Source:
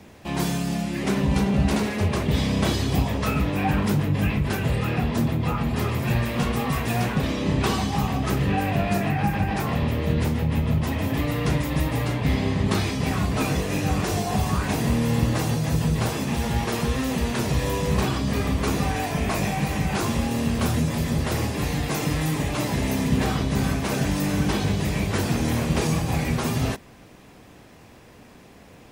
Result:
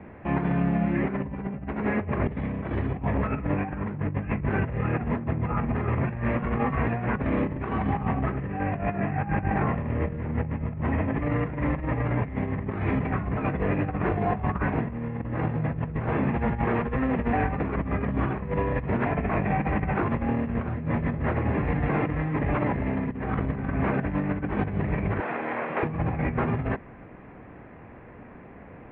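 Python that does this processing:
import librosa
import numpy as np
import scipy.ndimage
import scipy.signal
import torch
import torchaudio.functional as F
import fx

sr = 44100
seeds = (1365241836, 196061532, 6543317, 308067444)

y = fx.bandpass_edges(x, sr, low_hz=560.0, high_hz=4400.0, at=(25.2, 25.83))
y = fx.edit(y, sr, fx.reverse_span(start_s=17.33, length_s=1.73), tone=tone)
y = scipy.signal.sosfilt(scipy.signal.butter(6, 2200.0, 'lowpass', fs=sr, output='sos'), y)
y = fx.over_compress(y, sr, threshold_db=-26.0, ratio=-0.5)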